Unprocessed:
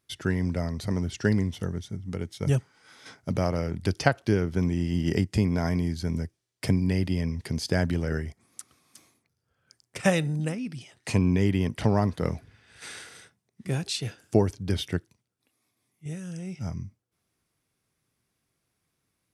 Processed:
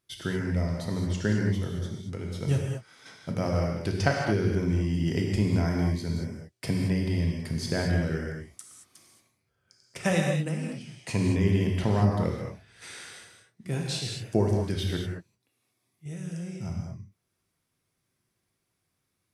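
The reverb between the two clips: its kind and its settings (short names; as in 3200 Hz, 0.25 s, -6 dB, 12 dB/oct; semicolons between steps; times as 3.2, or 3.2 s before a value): non-linear reverb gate 0.25 s flat, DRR -0.5 dB; gain -4 dB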